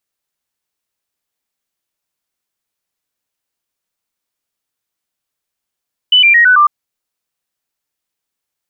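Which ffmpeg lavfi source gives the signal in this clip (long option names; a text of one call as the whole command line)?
ffmpeg -f lavfi -i "aevalsrc='0.596*clip(min(mod(t,0.11),0.11-mod(t,0.11))/0.005,0,1)*sin(2*PI*2990*pow(2,-floor(t/0.11)/3)*mod(t,0.11))':duration=0.55:sample_rate=44100" out.wav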